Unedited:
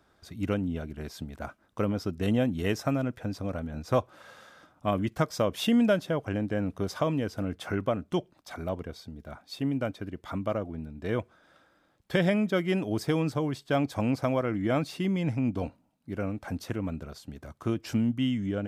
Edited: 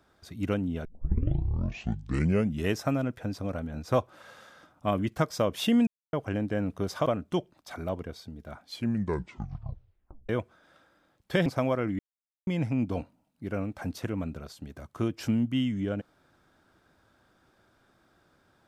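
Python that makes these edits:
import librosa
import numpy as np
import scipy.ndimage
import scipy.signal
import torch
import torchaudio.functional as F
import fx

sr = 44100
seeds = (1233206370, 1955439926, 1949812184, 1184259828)

y = fx.edit(x, sr, fx.tape_start(start_s=0.85, length_s=1.87),
    fx.silence(start_s=5.87, length_s=0.26),
    fx.cut(start_s=7.06, length_s=0.8),
    fx.tape_stop(start_s=9.41, length_s=1.68),
    fx.cut(start_s=12.26, length_s=1.86),
    fx.silence(start_s=14.65, length_s=0.48), tone=tone)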